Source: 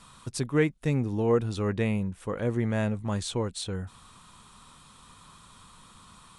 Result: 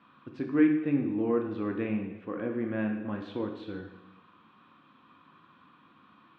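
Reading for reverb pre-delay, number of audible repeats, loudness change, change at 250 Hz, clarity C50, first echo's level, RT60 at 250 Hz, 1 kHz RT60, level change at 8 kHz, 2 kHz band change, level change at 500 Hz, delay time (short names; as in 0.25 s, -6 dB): 6 ms, none, -1.5 dB, +2.0 dB, 6.0 dB, none, 1.0 s, 1.0 s, under -35 dB, -3.5 dB, -4.5 dB, none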